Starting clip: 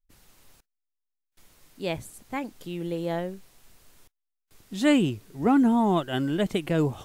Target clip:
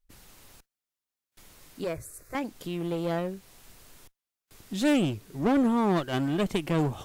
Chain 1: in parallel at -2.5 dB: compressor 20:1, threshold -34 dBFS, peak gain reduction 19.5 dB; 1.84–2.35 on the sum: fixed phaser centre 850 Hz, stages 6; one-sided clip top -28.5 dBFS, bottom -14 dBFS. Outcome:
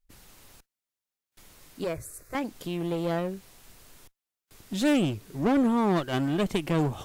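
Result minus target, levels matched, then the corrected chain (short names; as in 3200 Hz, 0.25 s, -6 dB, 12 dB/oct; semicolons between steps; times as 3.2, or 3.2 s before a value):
compressor: peak gain reduction -7.5 dB
in parallel at -2.5 dB: compressor 20:1, threshold -42 dBFS, peak gain reduction 27 dB; 1.84–2.35 on the sum: fixed phaser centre 850 Hz, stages 6; one-sided clip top -28.5 dBFS, bottom -14 dBFS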